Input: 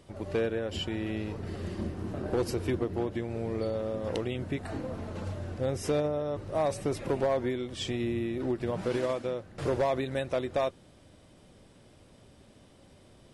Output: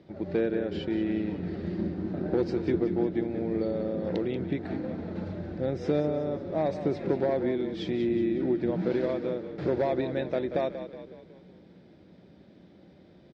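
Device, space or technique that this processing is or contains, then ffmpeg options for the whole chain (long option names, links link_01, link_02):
frequency-shifting delay pedal into a guitar cabinet: -filter_complex "[0:a]asplit=7[link_01][link_02][link_03][link_04][link_05][link_06][link_07];[link_02]adelay=184,afreqshift=-31,volume=-10.5dB[link_08];[link_03]adelay=368,afreqshift=-62,volume=-16.2dB[link_09];[link_04]adelay=552,afreqshift=-93,volume=-21.9dB[link_10];[link_05]adelay=736,afreqshift=-124,volume=-27.5dB[link_11];[link_06]adelay=920,afreqshift=-155,volume=-33.2dB[link_12];[link_07]adelay=1104,afreqshift=-186,volume=-38.9dB[link_13];[link_01][link_08][link_09][link_10][link_11][link_12][link_13]amix=inputs=7:normalize=0,highpass=81,equalizer=frequency=110:width_type=q:width=4:gain=-7,equalizer=frequency=180:width_type=q:width=4:gain=10,equalizer=frequency=330:width_type=q:width=4:gain=7,equalizer=frequency=1100:width_type=q:width=4:gain=-9,equalizer=frequency=2900:width_type=q:width=4:gain=-9,lowpass=frequency=4200:width=0.5412,lowpass=frequency=4200:width=1.3066"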